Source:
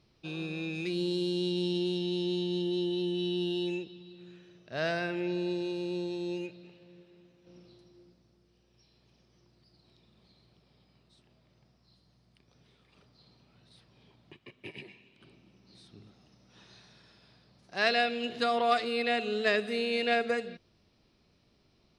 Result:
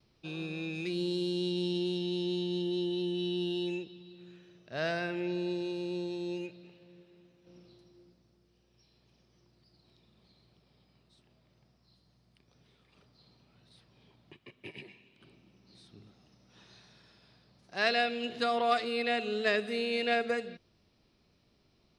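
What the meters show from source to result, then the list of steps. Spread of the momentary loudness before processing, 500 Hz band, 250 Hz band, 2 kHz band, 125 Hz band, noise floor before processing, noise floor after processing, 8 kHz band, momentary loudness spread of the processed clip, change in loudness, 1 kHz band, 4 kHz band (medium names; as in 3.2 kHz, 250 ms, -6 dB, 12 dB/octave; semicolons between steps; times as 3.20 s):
15 LU, -1.5 dB, -1.5 dB, -1.5 dB, -1.5 dB, -69 dBFS, -70 dBFS, -1.5 dB, 15 LU, -1.5 dB, -1.5 dB, -1.5 dB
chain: gate with hold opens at -60 dBFS; trim -1.5 dB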